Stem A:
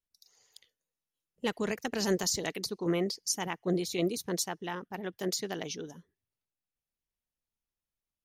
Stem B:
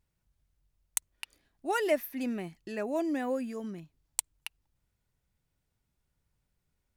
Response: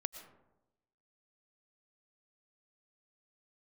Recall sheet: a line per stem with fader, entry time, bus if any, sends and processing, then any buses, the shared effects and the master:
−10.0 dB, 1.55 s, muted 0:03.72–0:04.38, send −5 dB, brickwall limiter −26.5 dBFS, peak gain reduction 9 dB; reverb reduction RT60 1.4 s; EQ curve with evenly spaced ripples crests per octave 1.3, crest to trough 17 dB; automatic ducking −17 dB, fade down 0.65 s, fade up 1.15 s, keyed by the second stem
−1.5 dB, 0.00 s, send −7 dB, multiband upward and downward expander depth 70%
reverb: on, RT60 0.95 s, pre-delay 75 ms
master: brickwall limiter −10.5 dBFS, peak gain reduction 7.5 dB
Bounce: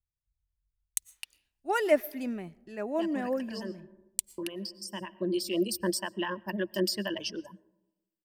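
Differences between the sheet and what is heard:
stem A −10.0 dB → +1.0 dB
reverb return −7.5 dB

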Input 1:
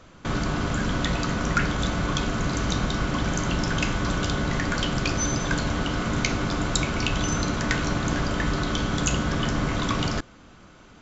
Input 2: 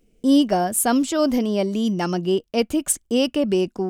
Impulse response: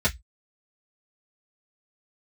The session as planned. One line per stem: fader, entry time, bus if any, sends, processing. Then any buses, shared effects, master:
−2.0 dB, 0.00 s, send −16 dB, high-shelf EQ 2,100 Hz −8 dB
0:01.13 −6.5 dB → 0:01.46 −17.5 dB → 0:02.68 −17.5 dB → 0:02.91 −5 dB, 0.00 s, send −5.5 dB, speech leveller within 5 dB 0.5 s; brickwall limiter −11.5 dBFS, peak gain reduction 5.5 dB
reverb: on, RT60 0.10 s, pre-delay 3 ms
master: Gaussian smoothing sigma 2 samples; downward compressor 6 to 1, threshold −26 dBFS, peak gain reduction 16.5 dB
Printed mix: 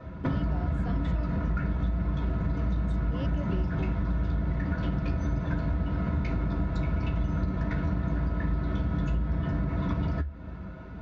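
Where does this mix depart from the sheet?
stem 2: send off
reverb return +9.5 dB

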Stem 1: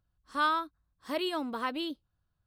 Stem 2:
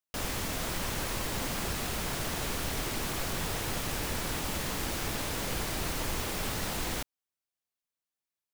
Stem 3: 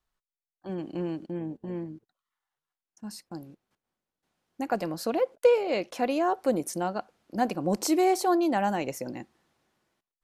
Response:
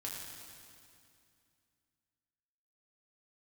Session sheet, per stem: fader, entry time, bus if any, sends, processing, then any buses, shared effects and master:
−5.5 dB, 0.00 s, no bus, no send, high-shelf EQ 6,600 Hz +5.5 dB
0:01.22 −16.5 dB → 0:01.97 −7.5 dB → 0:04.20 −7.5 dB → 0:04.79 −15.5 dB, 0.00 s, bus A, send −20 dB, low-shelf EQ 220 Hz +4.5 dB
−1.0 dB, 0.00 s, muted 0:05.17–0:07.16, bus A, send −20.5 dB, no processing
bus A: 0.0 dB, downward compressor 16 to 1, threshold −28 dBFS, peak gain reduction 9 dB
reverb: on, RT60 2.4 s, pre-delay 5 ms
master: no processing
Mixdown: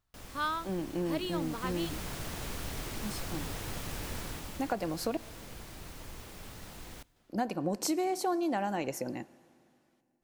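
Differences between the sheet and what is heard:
as on the sheet

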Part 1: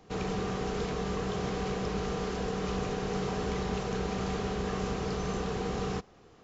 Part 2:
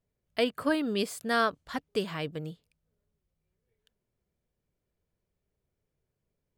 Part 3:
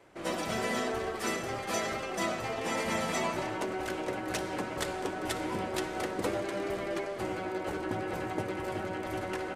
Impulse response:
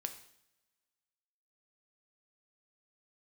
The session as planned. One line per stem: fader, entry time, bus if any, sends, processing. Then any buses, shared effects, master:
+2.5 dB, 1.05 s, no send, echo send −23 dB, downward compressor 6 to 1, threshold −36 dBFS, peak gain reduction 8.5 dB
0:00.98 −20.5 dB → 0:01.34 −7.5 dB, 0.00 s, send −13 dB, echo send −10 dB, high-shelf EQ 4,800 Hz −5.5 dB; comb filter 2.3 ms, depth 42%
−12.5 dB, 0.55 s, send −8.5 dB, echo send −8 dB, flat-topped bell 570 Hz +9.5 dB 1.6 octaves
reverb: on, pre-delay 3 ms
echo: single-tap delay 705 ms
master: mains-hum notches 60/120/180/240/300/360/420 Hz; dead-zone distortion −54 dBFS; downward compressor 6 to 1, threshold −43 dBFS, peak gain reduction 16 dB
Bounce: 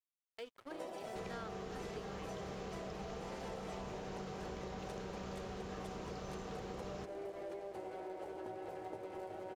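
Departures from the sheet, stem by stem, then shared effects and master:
stem 1: missing downward compressor 6 to 1, threshold −36 dBFS, peak gain reduction 8.5 dB
reverb return +6.5 dB

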